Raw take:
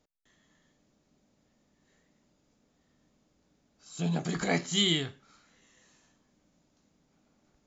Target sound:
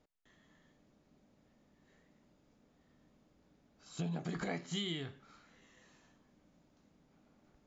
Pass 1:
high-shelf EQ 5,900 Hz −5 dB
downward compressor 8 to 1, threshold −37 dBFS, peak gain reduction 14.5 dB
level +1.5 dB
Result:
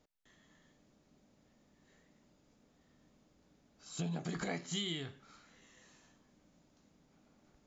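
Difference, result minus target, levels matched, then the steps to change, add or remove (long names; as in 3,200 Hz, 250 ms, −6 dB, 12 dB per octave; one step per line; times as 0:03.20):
8,000 Hz band +5.0 dB
change: high-shelf EQ 5,900 Hz −15.5 dB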